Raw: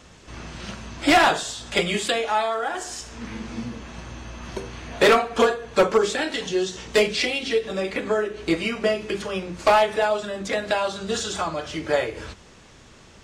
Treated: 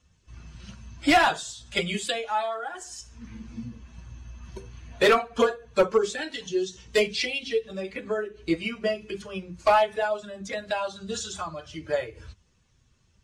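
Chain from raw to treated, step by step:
spectral dynamics exaggerated over time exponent 1.5
high-shelf EQ 11,000 Hz −3 dB
level −1 dB

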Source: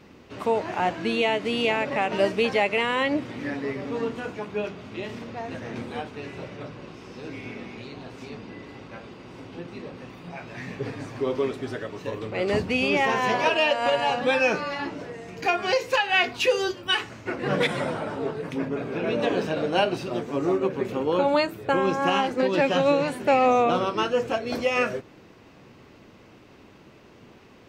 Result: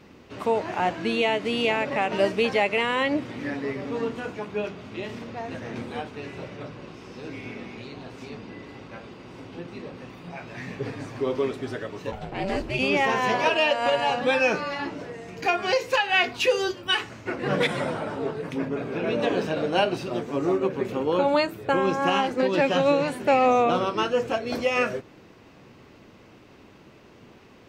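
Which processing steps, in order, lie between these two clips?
0:12.11–0:12.78: ring modulation 360 Hz → 110 Hz

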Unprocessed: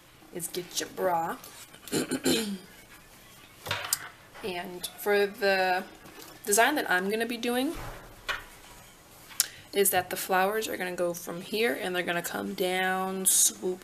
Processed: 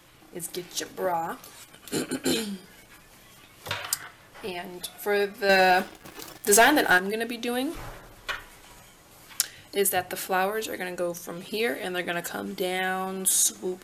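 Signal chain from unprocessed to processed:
0:05.49–0:06.98: leveller curve on the samples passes 2

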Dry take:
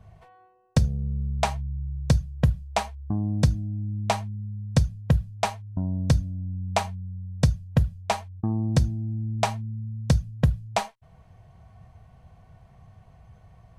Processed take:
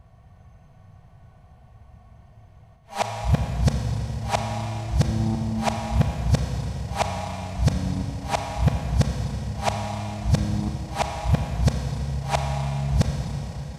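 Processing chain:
played backwards from end to start
four-comb reverb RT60 4 s, combs from 28 ms, DRR 2 dB

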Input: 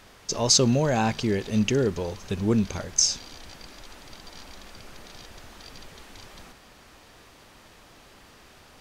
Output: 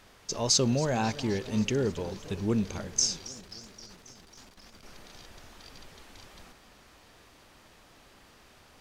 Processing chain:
0:03.28–0:04.83: tube saturation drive 42 dB, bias 0.75
feedback echo with a swinging delay time 268 ms, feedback 69%, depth 215 cents, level −17.5 dB
level −5 dB

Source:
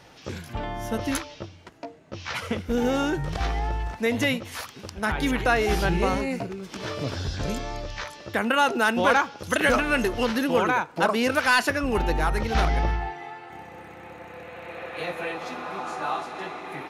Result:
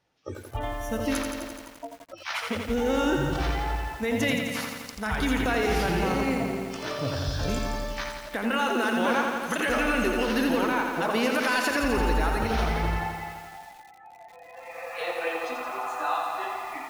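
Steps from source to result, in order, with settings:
noise reduction from a noise print of the clip's start 23 dB
brickwall limiter −18 dBFS, peak gain reduction 8 dB
feedback echo at a low word length 85 ms, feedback 80%, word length 8 bits, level −5 dB

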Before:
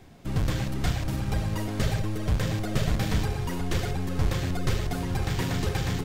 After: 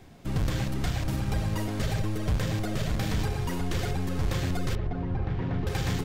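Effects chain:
brickwall limiter −18.5 dBFS, peak gain reduction 6.5 dB
0:04.75–0:05.67: head-to-tape spacing loss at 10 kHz 44 dB

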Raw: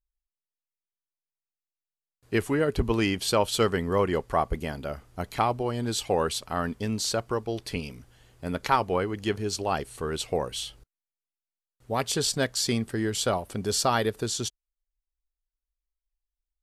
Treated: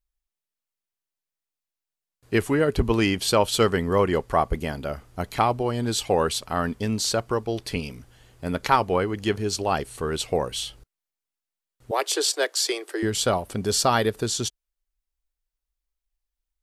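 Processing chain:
0:11.91–0:13.03: Butterworth high-pass 310 Hz 96 dB per octave
level +3.5 dB

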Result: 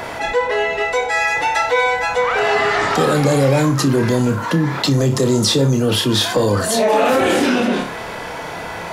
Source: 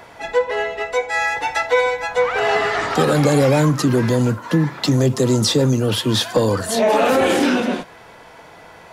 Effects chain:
flutter between parallel walls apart 5 metres, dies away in 0.24 s
envelope flattener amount 50%
level −2 dB

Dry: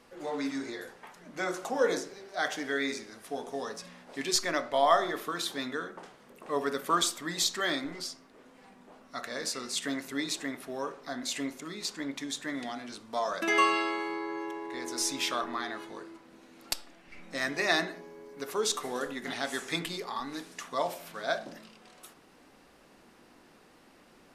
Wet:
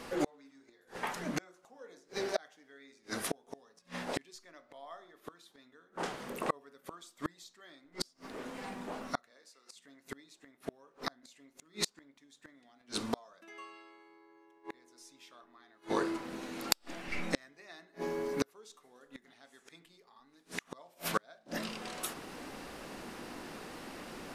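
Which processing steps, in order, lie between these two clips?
0:09.30–0:09.75: high-pass filter 250 Hz → 560 Hz 12 dB per octave
gate with flip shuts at −30 dBFS, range −38 dB
level +12.5 dB

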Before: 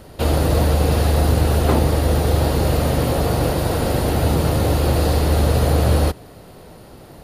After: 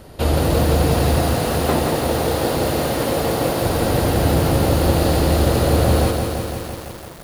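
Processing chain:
0:01.18–0:03.64: low-shelf EQ 130 Hz −11.5 dB
feedback echo at a low word length 169 ms, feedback 80%, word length 6 bits, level −5 dB

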